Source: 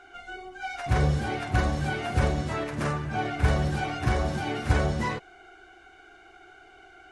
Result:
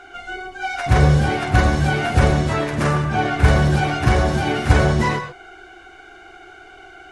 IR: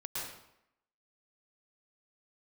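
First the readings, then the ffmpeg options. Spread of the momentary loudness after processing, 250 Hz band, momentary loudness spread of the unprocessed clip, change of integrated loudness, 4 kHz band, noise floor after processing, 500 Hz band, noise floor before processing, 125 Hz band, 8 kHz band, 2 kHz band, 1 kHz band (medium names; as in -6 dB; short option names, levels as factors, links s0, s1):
11 LU, +9.5 dB, 11 LU, +9.5 dB, +9.5 dB, -44 dBFS, +9.5 dB, -53 dBFS, +10.0 dB, +9.5 dB, +10.0 dB, +9.5 dB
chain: -filter_complex "[0:a]asplit=2[s0][s1];[1:a]atrim=start_sample=2205,atrim=end_sample=6174[s2];[s1][s2]afir=irnorm=-1:irlink=0,volume=0.596[s3];[s0][s3]amix=inputs=2:normalize=0,volume=2.11"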